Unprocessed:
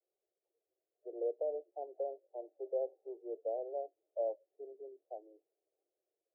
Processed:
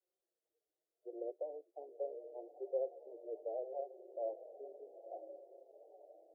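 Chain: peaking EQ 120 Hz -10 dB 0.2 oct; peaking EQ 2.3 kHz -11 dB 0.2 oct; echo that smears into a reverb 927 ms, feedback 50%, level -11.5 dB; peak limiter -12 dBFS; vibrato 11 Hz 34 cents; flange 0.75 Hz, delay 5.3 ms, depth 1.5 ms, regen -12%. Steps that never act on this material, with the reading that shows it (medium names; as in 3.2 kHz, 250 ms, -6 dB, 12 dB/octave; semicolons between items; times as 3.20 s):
peaking EQ 120 Hz: input has nothing below 320 Hz; peaking EQ 2.3 kHz: input has nothing above 850 Hz; peak limiter -12 dBFS: peak at its input -25.5 dBFS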